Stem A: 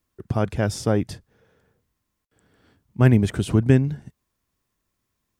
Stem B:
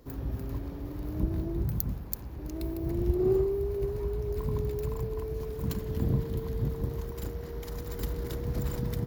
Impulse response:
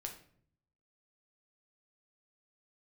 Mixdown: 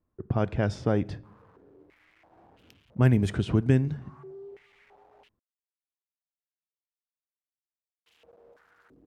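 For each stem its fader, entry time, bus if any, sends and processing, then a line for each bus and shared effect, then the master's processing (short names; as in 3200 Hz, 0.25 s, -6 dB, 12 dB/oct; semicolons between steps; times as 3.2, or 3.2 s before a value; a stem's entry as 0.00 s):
-1.0 dB, 0.00 s, send -11.5 dB, low-pass opened by the level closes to 950 Hz, open at -13 dBFS
-16.5 dB, 0.90 s, muted 5.29–8.06, no send, bell 2200 Hz -12.5 dB 1.4 oct; companded quantiser 2-bit; stepped band-pass 3 Hz 290–2900 Hz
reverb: on, RT60 0.60 s, pre-delay 6 ms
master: compressor 1.5:1, threshold -28 dBFS, peak gain reduction 7 dB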